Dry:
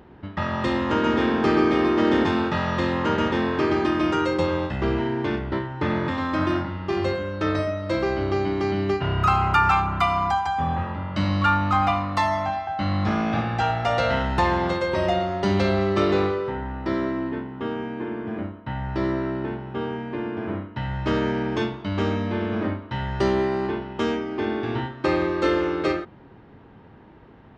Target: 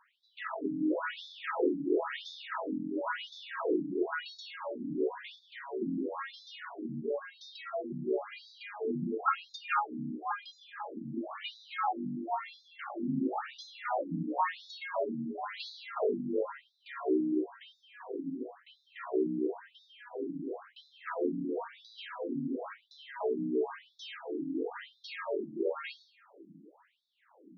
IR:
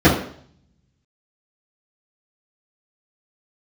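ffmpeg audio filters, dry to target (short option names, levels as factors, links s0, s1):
-filter_complex "[0:a]afreqshift=48,acrossover=split=360|3000[s0][s1][s2];[s0]acompressor=threshold=0.0562:ratio=6[s3];[s3][s1][s2]amix=inputs=3:normalize=0,asplit=2[s4][s5];[1:a]atrim=start_sample=2205,adelay=150[s6];[s5][s6]afir=irnorm=-1:irlink=0,volume=0.0188[s7];[s4][s7]amix=inputs=2:normalize=0,afftfilt=real='re*between(b*sr/1024,220*pow(4900/220,0.5+0.5*sin(2*PI*0.97*pts/sr))/1.41,220*pow(4900/220,0.5+0.5*sin(2*PI*0.97*pts/sr))*1.41)':imag='im*between(b*sr/1024,220*pow(4900/220,0.5+0.5*sin(2*PI*0.97*pts/sr))/1.41,220*pow(4900/220,0.5+0.5*sin(2*PI*0.97*pts/sr))*1.41)':win_size=1024:overlap=0.75,volume=0.501"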